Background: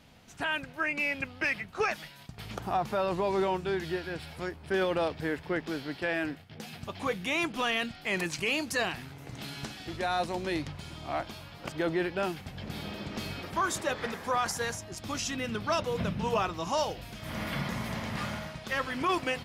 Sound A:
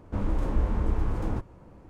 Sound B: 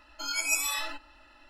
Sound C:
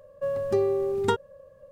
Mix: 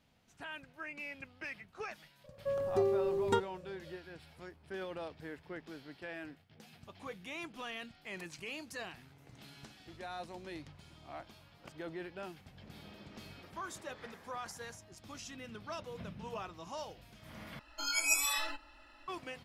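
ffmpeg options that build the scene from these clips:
-filter_complex "[0:a]volume=-14dB,asplit=2[a][b];[a]atrim=end=17.594[c];[2:a]atrim=end=1.49,asetpts=PTS-STARTPTS,volume=-2.5dB[d];[b]atrim=start=19.076[e];[3:a]atrim=end=1.71,asetpts=PTS-STARTPTS,volume=-6.5dB,afade=t=in:d=0.004:c=hsin,afade=t=out:st=1.706:d=0.004:c=hsin,adelay=2240[f];[c][d]acrossfade=d=0.004:c1=hsin:c2=hsin[g];[g][e]acrossfade=d=0.004:c1=hsin:c2=hsin[h];[h][f]amix=inputs=2:normalize=0"

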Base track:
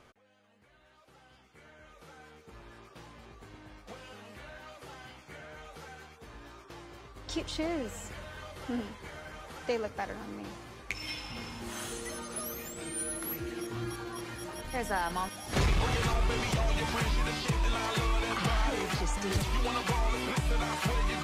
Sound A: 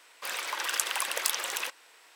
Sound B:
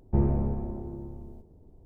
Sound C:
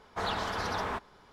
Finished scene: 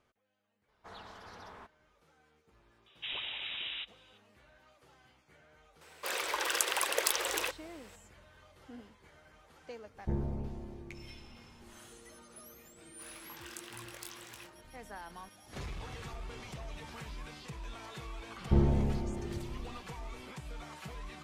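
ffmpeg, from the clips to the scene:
-filter_complex "[3:a]asplit=2[a][b];[1:a]asplit=2[c][d];[2:a]asplit=2[e][f];[0:a]volume=-15dB[g];[b]lowpass=f=3.3k:t=q:w=0.5098,lowpass=f=3.3k:t=q:w=0.6013,lowpass=f=3.3k:t=q:w=0.9,lowpass=f=3.3k:t=q:w=2.563,afreqshift=-3900[h];[c]equalizer=f=420:w=1.2:g=10.5[i];[d]flanger=delay=17:depth=7.2:speed=2[j];[a]atrim=end=1.32,asetpts=PTS-STARTPTS,volume=-17.5dB,afade=t=in:d=0.004:c=hsin,afade=t=out:st=1.316:d=0.004:c=hsin,adelay=680[k];[h]atrim=end=1.32,asetpts=PTS-STARTPTS,volume=-6.5dB,afade=t=in:d=0.004:c=hsin,afade=t=out:st=1.316:d=0.004:c=hsin,adelay=2860[l];[i]atrim=end=2.15,asetpts=PTS-STARTPTS,volume=-2dB,afade=t=in:d=0.004:c=hsin,afade=t=out:st=2.146:d=0.004:c=hsin,adelay=256221S[m];[e]atrim=end=1.85,asetpts=PTS-STARTPTS,volume=-10dB,afade=t=in:d=0.004:c=hsin,afade=t=out:st=1.846:d=0.004:c=hsin,adelay=438354S[n];[j]atrim=end=2.15,asetpts=PTS-STARTPTS,volume=-15dB,afade=t=in:d=0.004:c=hsin,afade=t=out:st=2.146:d=0.004:c=hsin,adelay=12770[o];[f]atrim=end=1.85,asetpts=PTS-STARTPTS,volume=-2dB,afade=t=in:d=0.004:c=hsin,afade=t=out:st=1.846:d=0.004:c=hsin,adelay=18380[p];[g][k][l][m][n][o][p]amix=inputs=7:normalize=0"

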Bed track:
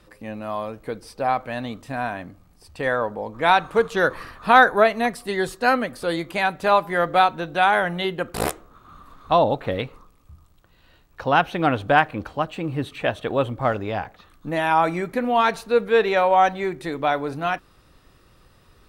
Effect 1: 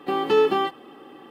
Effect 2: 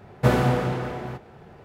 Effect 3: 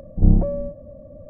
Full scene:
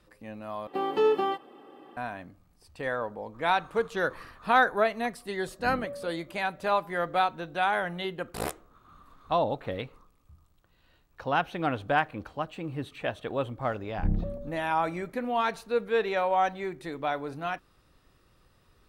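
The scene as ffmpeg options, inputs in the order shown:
-filter_complex "[3:a]asplit=2[a][b];[0:a]volume=-8.5dB[c];[1:a]equalizer=f=620:t=o:w=1.6:g=6[d];[a]highpass=f=580:p=1[e];[b]aecho=1:1:143:0.282[f];[c]asplit=2[g][h];[g]atrim=end=0.674[i];[d]atrim=end=1.3,asetpts=PTS-STARTPTS,volume=-9dB[j];[h]atrim=start=1.966[k];[e]atrim=end=1.29,asetpts=PTS-STARTPTS,volume=-10dB,afade=t=in:d=0.004:c=hsin,afade=t=out:st=1.286:d=0.004:c=hsin,adelay=5420[l];[f]atrim=end=1.29,asetpts=PTS-STARTPTS,volume=-13dB,afade=t=in:d=0.004:c=hsin,afade=t=out:st=1.286:d=0.004:c=hsin,adelay=13810[m];[i][j]acrossfade=d=0.004:c1=hsin:c2=hsin[n];[n][k]acrossfade=d=0.004:c1=hsin:c2=hsin[o];[o][l][m]amix=inputs=3:normalize=0"

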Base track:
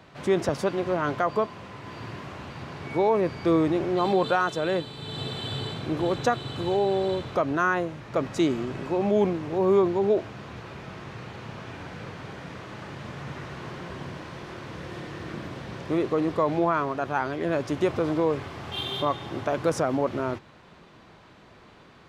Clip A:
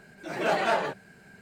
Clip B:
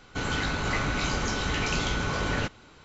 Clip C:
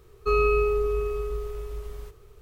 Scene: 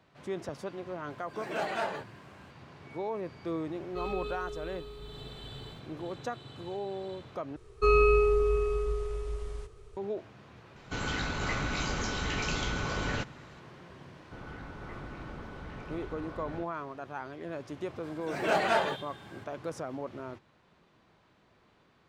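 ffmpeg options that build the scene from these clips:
-filter_complex "[1:a]asplit=2[a][b];[3:a]asplit=2[c][d];[2:a]asplit=2[e][f];[0:a]volume=-13dB[g];[d]aresample=22050,aresample=44100[h];[f]lowpass=1.4k[i];[g]asplit=2[j][k];[j]atrim=end=7.564[l];[h]atrim=end=2.41,asetpts=PTS-STARTPTS,volume=-0.5dB[m];[k]atrim=start=9.966[n];[a]atrim=end=1.41,asetpts=PTS-STARTPTS,volume=-7.5dB,afade=t=in:d=0.004:c=hsin,afade=t=out:st=1.406:d=0.004:c=hsin,adelay=1100[o];[c]atrim=end=2.41,asetpts=PTS-STARTPTS,volume=-16dB,afade=t=in:d=0.004:c=hsin,afade=t=out:st=2.406:d=0.004:c=hsin,adelay=162729S[p];[e]atrim=end=2.84,asetpts=PTS-STARTPTS,volume=-4.5dB,afade=t=in:d=0.004:c=hsin,afade=t=out:st=2.836:d=0.004:c=hsin,adelay=10760[q];[i]atrim=end=2.84,asetpts=PTS-STARTPTS,volume=-14.5dB,afade=t=in:d=0.004:c=hsin,afade=t=out:st=2.836:d=0.004:c=hsin,adelay=14160[r];[b]atrim=end=1.41,asetpts=PTS-STARTPTS,volume=-1.5dB,afade=t=in:d=0.004:c=hsin,afade=t=out:st=1.406:d=0.004:c=hsin,adelay=18030[s];[l][m]acrossfade=d=0.004:c1=hsin:c2=hsin[t];[t][n]acrossfade=d=0.004:c1=hsin:c2=hsin[u];[u][o][p][q][r][s]amix=inputs=6:normalize=0"

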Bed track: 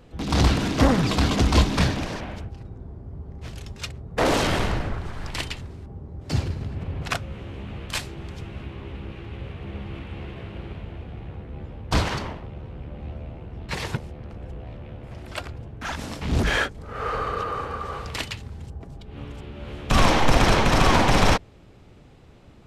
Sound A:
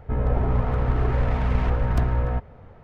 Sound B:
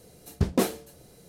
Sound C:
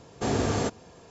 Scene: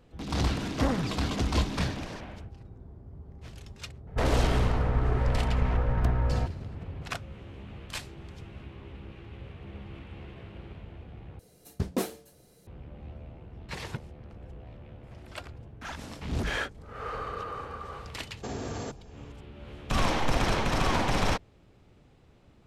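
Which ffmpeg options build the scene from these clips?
-filter_complex "[0:a]volume=-8.5dB[a];[3:a]alimiter=limit=-21dB:level=0:latency=1:release=48[b];[a]asplit=2[c][d];[c]atrim=end=11.394[e];[2:a]atrim=end=1.28,asetpts=PTS-STARTPTS,volume=-6dB[f];[d]atrim=start=12.666[g];[1:a]atrim=end=2.83,asetpts=PTS-STARTPTS,volume=-4dB,afade=t=in:d=0.004:c=hsin,afade=t=out:st=2.826:d=0.004:c=hsin,adelay=4070[h];[b]atrim=end=1.1,asetpts=PTS-STARTPTS,volume=-6.5dB,afade=t=in:d=0.004:c=hsin,afade=t=out:st=1.096:d=0.004:c=hsin,adelay=18220[i];[e][f]acrossfade=d=0.004:c1=hsin:c2=hsin[j];[j][g]acrossfade=d=0.004:c1=hsin:c2=hsin[k];[k][h][i]amix=inputs=3:normalize=0"

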